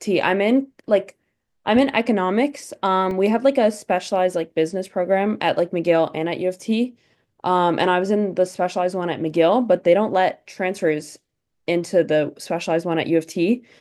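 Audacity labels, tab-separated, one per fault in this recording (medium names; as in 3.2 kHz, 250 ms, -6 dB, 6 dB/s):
3.110000	3.110000	dropout 2 ms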